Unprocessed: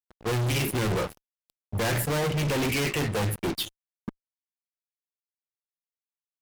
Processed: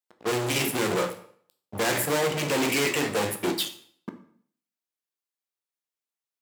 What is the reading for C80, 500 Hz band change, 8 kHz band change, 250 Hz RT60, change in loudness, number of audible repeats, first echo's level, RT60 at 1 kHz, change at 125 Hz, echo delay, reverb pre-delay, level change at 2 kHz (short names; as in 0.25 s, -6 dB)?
15.0 dB, +3.0 dB, +4.0 dB, 0.65 s, +1.5 dB, none, none, 0.55 s, -8.0 dB, none, 11 ms, +3.0 dB